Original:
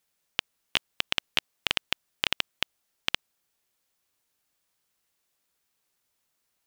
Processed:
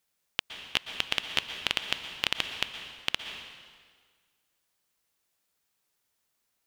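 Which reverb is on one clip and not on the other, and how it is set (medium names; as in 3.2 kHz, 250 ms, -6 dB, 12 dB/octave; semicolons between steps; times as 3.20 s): plate-style reverb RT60 1.7 s, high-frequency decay 0.9×, pre-delay 105 ms, DRR 7 dB; trim -1.5 dB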